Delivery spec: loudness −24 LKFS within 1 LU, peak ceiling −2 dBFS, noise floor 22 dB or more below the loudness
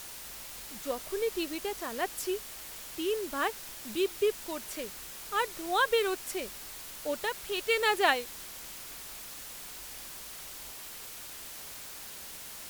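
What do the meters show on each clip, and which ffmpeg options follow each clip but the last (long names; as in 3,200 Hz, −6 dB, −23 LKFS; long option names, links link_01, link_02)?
background noise floor −45 dBFS; target noise floor −56 dBFS; integrated loudness −33.5 LKFS; sample peak −10.5 dBFS; target loudness −24.0 LKFS
→ -af "afftdn=noise_reduction=11:noise_floor=-45"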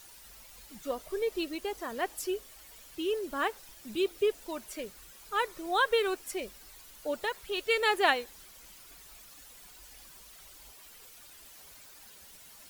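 background noise floor −53 dBFS; target noise floor −54 dBFS
→ -af "afftdn=noise_reduction=6:noise_floor=-53"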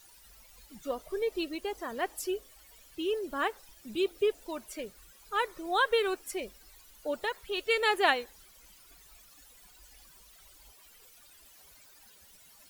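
background noise floor −58 dBFS; integrated loudness −32.0 LKFS; sample peak −10.5 dBFS; target loudness −24.0 LKFS
→ -af "volume=8dB"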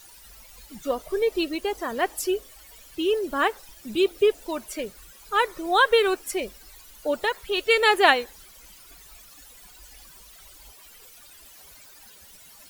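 integrated loudness −24.0 LKFS; sample peak −2.5 dBFS; background noise floor −50 dBFS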